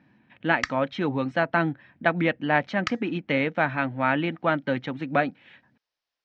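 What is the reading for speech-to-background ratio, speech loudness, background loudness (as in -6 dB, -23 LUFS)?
8.5 dB, -26.0 LUFS, -34.5 LUFS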